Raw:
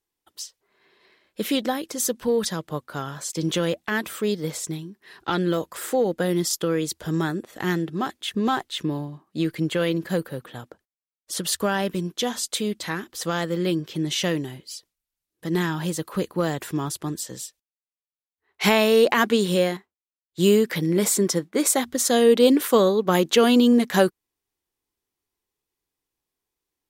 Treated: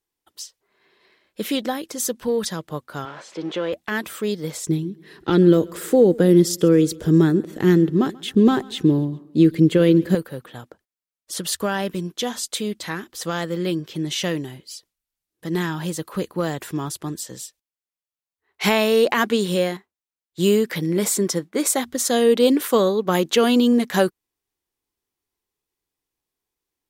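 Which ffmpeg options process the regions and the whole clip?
-filter_complex "[0:a]asettb=1/sr,asplit=3[a][b][c];[a]atrim=end=3.054[d];[b]atrim=start=3.05:end=3.73,asetpts=PTS-STARTPTS,afade=t=in:d=0.004:c=qsin,afade=t=out:st=0.676:d=0.004:c=qsin,aeval=exprs='val(0)+0.5*0.0224*sgn(val(0))':c=same,highpass=390,lowpass=3.2k,tiltshelf=f=650:g=3.5[e];[c]atrim=start=3.726[f];[d][e]acrossfade=d=0.004:c1=hsin:c2=qsin[g];[g][f]acrossfade=d=0.004:c1=qsin:c2=hsin,asettb=1/sr,asplit=3[h][i][j];[h]atrim=end=4.674[k];[i]atrim=start=4.67:end=10.15,asetpts=PTS-STARTPTS,afade=t=in:d=0.004:c=qsin,afade=t=out:st=5.476:d=0.004:c=qsin,lowshelf=f=550:t=q:w=1.5:g=8.5,aecho=1:1:135|270|405:0.0708|0.0326|0.015,atrim=end_sample=241668[l];[j]atrim=start=10.146[m];[k][l]acrossfade=d=0.004:c1=hsin:c2=qsin[n];[n][m]acrossfade=d=0.004:c1=qsin:c2=hsin"

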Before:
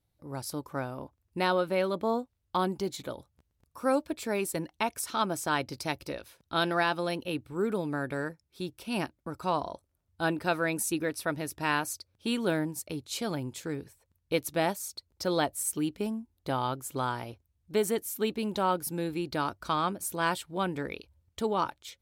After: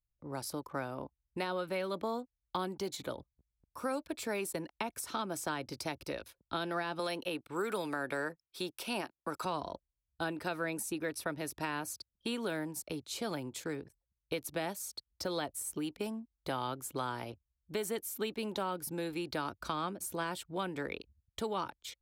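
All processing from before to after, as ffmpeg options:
-filter_complex "[0:a]asettb=1/sr,asplit=3[a][b][c];[a]atrim=end=6.994[d];[b]atrim=start=6.99:end=9.45,asetpts=PTS-STARTPTS,afade=t=in:d=0.004:c=qsin,afade=t=out:st=2.456:d=0.004:c=qsin,highpass=f=650:p=1,acontrast=85[e];[c]atrim=start=9.446[f];[d][e]acrossfade=d=0.004:c1=hsin:c2=qsin[g];[g][f]acrossfade=d=0.004:c1=qsin:c2=hsin,anlmdn=0.001,alimiter=limit=-19dB:level=0:latency=1:release=231,acrossover=split=240|480|1200[h][i][j][k];[h]acompressor=threshold=-48dB:ratio=4[l];[i]acompressor=threshold=-41dB:ratio=4[m];[j]acompressor=threshold=-40dB:ratio=4[n];[k]acompressor=threshold=-39dB:ratio=4[o];[l][m][n][o]amix=inputs=4:normalize=0"

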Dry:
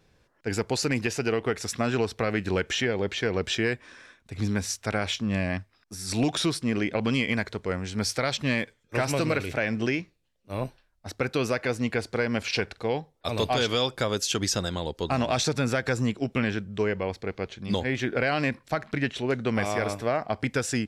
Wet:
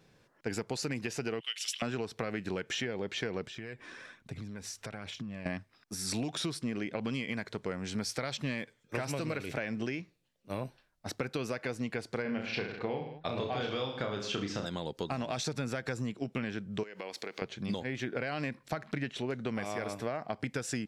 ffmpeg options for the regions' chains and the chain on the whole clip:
-filter_complex "[0:a]asettb=1/sr,asplit=3[a][b][c];[a]atrim=end=1.404[d];[b]atrim=start=1.4:end=1.82,asetpts=PTS-STARTPTS,afade=t=in:d=0.004:c=qsin,afade=t=out:st=0.416:d=0.004:c=qsin,highpass=f=3k:t=q:w=14,equalizer=f=3.8k:t=o:w=0.77:g=-3.5[e];[c]atrim=start=1.816[f];[d][e]acrossfade=d=0.004:c1=hsin:c2=qsin[g];[g][f]acrossfade=d=0.004:c1=qsin:c2=hsin,asettb=1/sr,asplit=3[h][i][j];[h]atrim=end=3.464[k];[i]atrim=start=3.46:end=5.46,asetpts=PTS-STARTPTS,afade=t=in:d=0.004:c=qsin,afade=t=out:st=1.996:d=0.004:c=qsin,bass=f=250:g=2,treble=f=4k:g=-3,acompressor=threshold=-38dB:ratio=16:attack=3.2:release=140:knee=1:detection=peak,aphaser=in_gain=1:out_gain=1:delay=3:decay=0.33:speed=1.2:type=triangular[l];[j]atrim=start=5.456[m];[k][l]acrossfade=d=0.004:c1=hsin:c2=qsin[n];[n][m]acrossfade=d=0.004:c1=qsin:c2=hsin,asettb=1/sr,asplit=3[o][p][q];[o]atrim=end=12.224[r];[p]atrim=start=12.22:end=14.66,asetpts=PTS-STARTPTS,afade=t=in:d=0.004:c=qsin,afade=t=out:st=2.436:d=0.004:c=qsin,lowpass=3.1k,aecho=1:1:30|64.5|104.2|149.8|202.3:0.631|0.398|0.251|0.158|0.1,atrim=end_sample=107604[s];[q]atrim=start=14.656[t];[r][s]acrossfade=d=0.004:c1=hsin:c2=qsin[u];[u][t]acrossfade=d=0.004:c1=qsin:c2=hsin,asettb=1/sr,asplit=3[v][w][x];[v]atrim=end=16.834[y];[w]atrim=start=16.83:end=17.42,asetpts=PTS-STARTPTS,afade=t=in:d=0.004:c=qsin,afade=t=out:st=0.586:d=0.004:c=qsin,highpass=290,highshelf=f=2k:g=11.5,acompressor=threshold=-35dB:ratio=16:attack=3.2:release=140:knee=1:detection=peak[z];[x]atrim=start=17.416[aa];[y][z]acrossfade=d=0.004:c1=hsin:c2=qsin[ab];[ab][aa]acrossfade=d=0.004:c1=qsin:c2=hsin,lowshelf=f=100:t=q:w=1.5:g=-8.5,acompressor=threshold=-32dB:ratio=6"

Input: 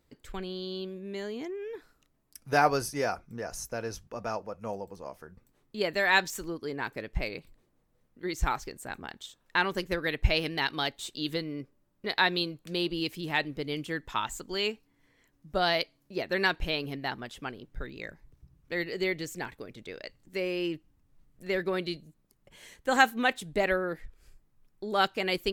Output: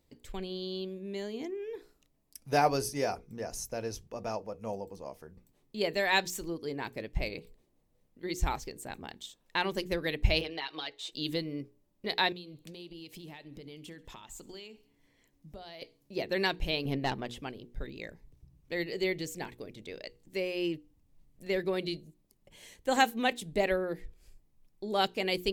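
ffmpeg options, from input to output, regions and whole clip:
-filter_complex "[0:a]asettb=1/sr,asplit=3[a][b][c];[a]atrim=end=10.414[d];[b]atrim=start=10.41:end=11.12,asetpts=PTS-STARTPTS,afade=t=in:d=0.004:c=qsin,afade=t=out:st=0.706:d=0.004:c=qsin,acompressor=threshold=-31dB:ratio=5:attack=3.2:release=140:knee=1:detection=peak,acrossover=split=400 5400:gain=0.112 1 0.141[e][f][g];[e][f][g]amix=inputs=3:normalize=0,aecho=1:1:6.4:0.74,atrim=end_sample=31311[h];[c]atrim=start=11.116[i];[d][h]acrossfade=d=0.004:c1=hsin:c2=qsin[j];[j][i]acrossfade=d=0.004:c1=qsin:c2=hsin,asettb=1/sr,asplit=3[k][l][m];[k]atrim=end=12.324[n];[l]atrim=start=12.32:end=15.82,asetpts=PTS-STARTPTS,afade=t=in:d=0.004:c=qsin,afade=t=out:st=3.496:d=0.004:c=qsin,acompressor=threshold=-41dB:ratio=16:attack=3.2:release=140:knee=1:detection=peak,aecho=1:1:68|136|204|272:0.0794|0.0461|0.0267|0.0155,atrim=end_sample=154350[o];[m]atrim=start=15.816[p];[n][o]acrossfade=d=0.004:c1=hsin:c2=qsin[q];[q][p]acrossfade=d=0.004:c1=qsin:c2=hsin,asettb=1/sr,asplit=3[r][s][t];[r]atrim=end=16.854[u];[s]atrim=start=16.85:end=17.39,asetpts=PTS-STARTPTS,afade=t=in:d=0.004:c=qsin,afade=t=out:st=0.536:d=0.004:c=qsin,highshelf=f=3.7k:g=-7.5,aeval=exprs='(tanh(20*val(0)+0.5)-tanh(0.5))/20':c=same,acontrast=87[v];[t]atrim=start=17.386[w];[u][v]acrossfade=d=0.004:c1=hsin:c2=qsin[x];[x][w]acrossfade=d=0.004:c1=qsin:c2=hsin,equalizer=f=1.4k:w=1.7:g=-9,bandreject=f=60:t=h:w=6,bandreject=f=120:t=h:w=6,bandreject=f=180:t=h:w=6,bandreject=f=240:t=h:w=6,bandreject=f=300:t=h:w=6,bandreject=f=360:t=h:w=6,bandreject=f=420:t=h:w=6,bandreject=f=480:t=h:w=6"

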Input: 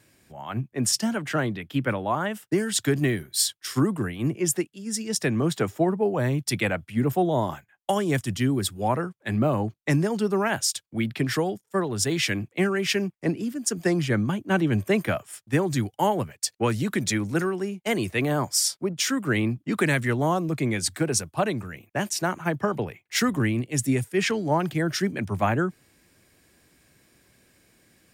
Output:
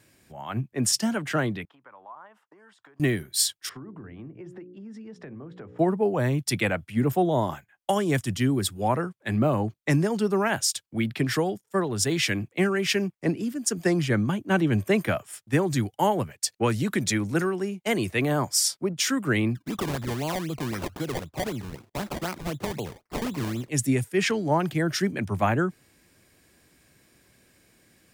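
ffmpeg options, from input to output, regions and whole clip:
-filter_complex "[0:a]asettb=1/sr,asplit=3[a][b][c];[a]atrim=end=1.654[d];[b]atrim=start=1.65:end=3,asetpts=PTS-STARTPTS,afade=t=in:d=0.004:c=qsin,afade=t=out:st=1.346:d=0.004:c=qsin,acompressor=threshold=-34dB:ratio=16:attack=3.2:release=140:knee=1:detection=peak,bandpass=f=1k:t=q:w=2.9[e];[c]atrim=start=2.996[f];[d][e]acrossfade=d=0.004:c1=hsin:c2=qsin[g];[g][f]acrossfade=d=0.004:c1=qsin:c2=hsin,asettb=1/sr,asplit=3[h][i][j];[h]atrim=end=3.694[k];[i]atrim=start=3.69:end=5.79,asetpts=PTS-STARTPTS,afade=t=in:d=0.004:c=qsin,afade=t=out:st=2.096:d=0.004:c=qsin,lowpass=1.5k,bandreject=f=60:t=h:w=6,bandreject=f=120:t=h:w=6,bandreject=f=180:t=h:w=6,bandreject=f=240:t=h:w=6,bandreject=f=300:t=h:w=6,bandreject=f=360:t=h:w=6,bandreject=f=420:t=h:w=6,bandreject=f=480:t=h:w=6,bandreject=f=540:t=h:w=6,acompressor=threshold=-38dB:ratio=10:attack=3.2:release=140:knee=1:detection=peak[l];[j]atrim=start=5.786[m];[k][l]acrossfade=d=0.004:c1=hsin:c2=qsin[n];[n][m]acrossfade=d=0.004:c1=qsin:c2=hsin,asettb=1/sr,asplit=3[o][p][q];[o]atrim=end=19.554[r];[p]atrim=start=19.55:end=23.69,asetpts=PTS-STARTPTS,afade=t=in:d=0.004:c=qsin,afade=t=out:st=4.136:d=0.004:c=qsin,acompressor=threshold=-30dB:ratio=2:attack=3.2:release=140:knee=1:detection=peak,acrusher=samples=23:mix=1:aa=0.000001:lfo=1:lforange=23:lforate=3.9[s];[q]atrim=start=23.686[t];[r][s]acrossfade=d=0.004:c1=hsin:c2=qsin[u];[u][t]acrossfade=d=0.004:c1=qsin:c2=hsin"

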